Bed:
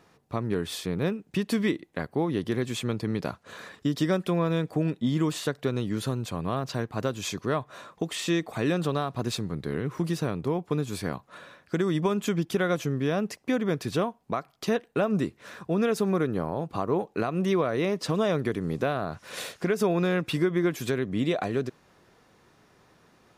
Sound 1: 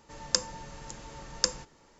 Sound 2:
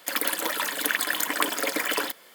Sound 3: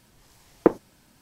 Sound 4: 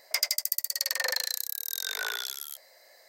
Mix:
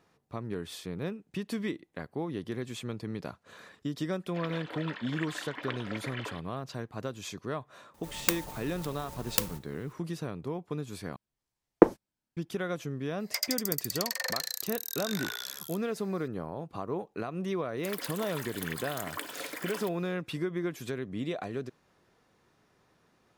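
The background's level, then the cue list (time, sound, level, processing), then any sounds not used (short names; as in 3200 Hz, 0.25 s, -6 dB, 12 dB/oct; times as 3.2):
bed -8 dB
4.28 add 2 -12.5 dB + LPF 3700 Hz 24 dB/oct
7.94 add 1 -0.5 dB + clock jitter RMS 0.11 ms
11.16 replace with 3 + gate -48 dBFS, range -32 dB
13.2 add 4 -4.5 dB
17.77 add 2 -13.5 dB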